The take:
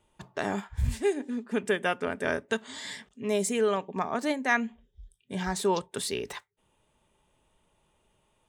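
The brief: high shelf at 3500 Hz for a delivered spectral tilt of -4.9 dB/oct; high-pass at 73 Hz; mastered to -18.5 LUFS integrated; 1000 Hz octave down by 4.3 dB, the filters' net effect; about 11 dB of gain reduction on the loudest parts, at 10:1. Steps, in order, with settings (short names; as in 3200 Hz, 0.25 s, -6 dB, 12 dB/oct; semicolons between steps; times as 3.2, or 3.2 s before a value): HPF 73 Hz; bell 1000 Hz -5 dB; high shelf 3500 Hz -8.5 dB; compressor 10:1, threshold -33 dBFS; gain +21 dB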